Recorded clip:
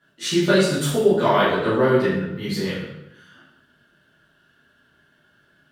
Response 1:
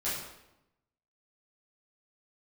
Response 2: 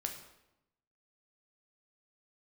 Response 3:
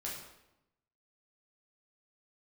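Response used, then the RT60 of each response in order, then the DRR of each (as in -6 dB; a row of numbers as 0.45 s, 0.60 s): 1; 0.90 s, 0.90 s, 0.90 s; -11.0 dB, 3.0 dB, -5.0 dB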